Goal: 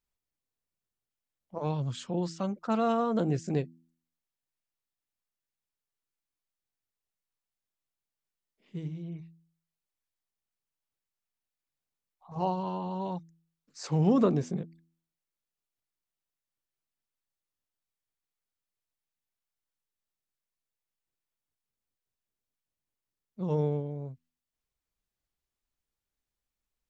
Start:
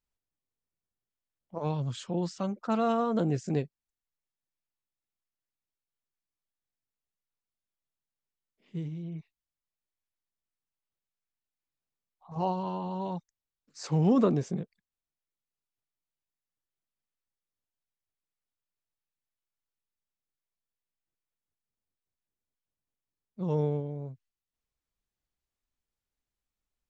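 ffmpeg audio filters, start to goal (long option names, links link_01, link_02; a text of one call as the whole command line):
ffmpeg -i in.wav -af "bandreject=frequency=82.5:width_type=h:width=4,bandreject=frequency=165:width_type=h:width=4,bandreject=frequency=247.5:width_type=h:width=4,bandreject=frequency=330:width_type=h:width=4" out.wav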